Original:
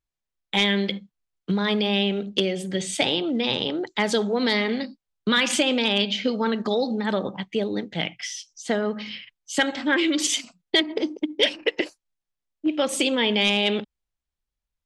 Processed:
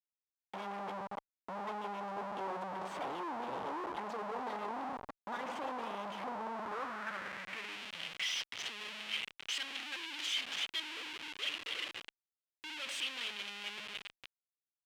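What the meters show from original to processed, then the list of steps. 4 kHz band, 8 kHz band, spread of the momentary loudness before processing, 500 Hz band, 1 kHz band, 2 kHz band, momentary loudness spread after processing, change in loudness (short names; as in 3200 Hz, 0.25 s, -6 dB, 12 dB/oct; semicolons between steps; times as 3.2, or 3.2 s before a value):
-15.0 dB, -17.5 dB, 10 LU, -20.0 dB, -7.0 dB, -14.5 dB, 9 LU, -16.0 dB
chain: low shelf 400 Hz +7 dB; limiter -15.5 dBFS, peak gain reduction 9 dB; compressor 6:1, threshold -24 dBFS, peak gain reduction 6 dB; split-band echo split 1000 Hz, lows 93 ms, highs 0.289 s, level -12.5 dB; rotary speaker horn 7.5 Hz, later 0.85 Hz, at 4.72; Schmitt trigger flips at -39.5 dBFS; band-pass sweep 890 Hz -> 2900 Hz, 6.53–7.83; gain +2 dB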